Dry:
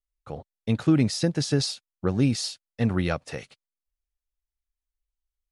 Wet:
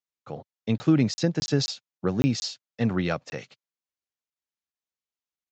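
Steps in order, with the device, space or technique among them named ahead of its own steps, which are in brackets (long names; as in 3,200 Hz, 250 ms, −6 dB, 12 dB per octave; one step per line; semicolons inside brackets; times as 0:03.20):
call with lost packets (high-pass filter 110 Hz 24 dB per octave; downsampling to 16,000 Hz; dropped packets of 20 ms random)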